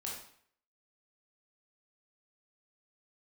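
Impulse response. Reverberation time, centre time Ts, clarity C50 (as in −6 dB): 0.60 s, 45 ms, 2.5 dB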